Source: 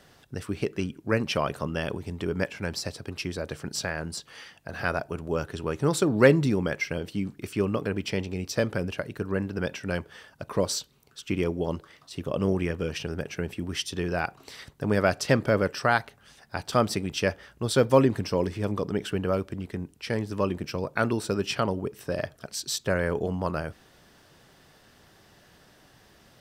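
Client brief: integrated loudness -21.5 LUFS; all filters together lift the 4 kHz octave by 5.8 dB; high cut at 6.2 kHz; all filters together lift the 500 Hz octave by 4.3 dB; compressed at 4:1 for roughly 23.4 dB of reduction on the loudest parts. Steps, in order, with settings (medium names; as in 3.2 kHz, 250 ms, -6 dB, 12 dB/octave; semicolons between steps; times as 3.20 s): low-pass 6.2 kHz; peaking EQ 500 Hz +5 dB; peaking EQ 4 kHz +8.5 dB; compression 4:1, threshold -38 dBFS; trim +18.5 dB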